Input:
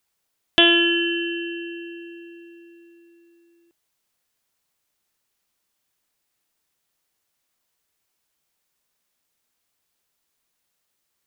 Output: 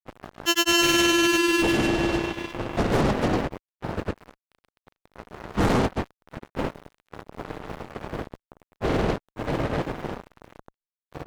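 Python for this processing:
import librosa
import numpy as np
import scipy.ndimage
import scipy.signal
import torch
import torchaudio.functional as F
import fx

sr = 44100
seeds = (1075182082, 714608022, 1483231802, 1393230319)

y = fx.dmg_wind(x, sr, seeds[0], corner_hz=490.0, level_db=-35.0)
y = fx.fuzz(y, sr, gain_db=36.0, gate_db=-42.0)
y = fx.granulator(y, sr, seeds[1], grain_ms=100.0, per_s=20.0, spray_ms=175.0, spread_st=0)
y = y * librosa.db_to_amplitude(-4.0)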